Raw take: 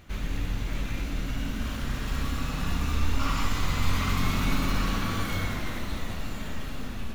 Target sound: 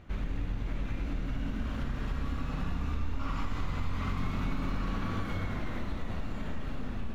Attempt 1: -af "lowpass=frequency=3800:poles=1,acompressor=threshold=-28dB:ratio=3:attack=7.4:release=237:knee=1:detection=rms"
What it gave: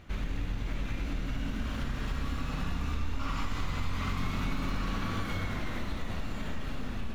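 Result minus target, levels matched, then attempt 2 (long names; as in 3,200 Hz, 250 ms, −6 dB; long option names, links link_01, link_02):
4,000 Hz band +5.0 dB
-af "lowpass=frequency=1400:poles=1,acompressor=threshold=-28dB:ratio=3:attack=7.4:release=237:knee=1:detection=rms"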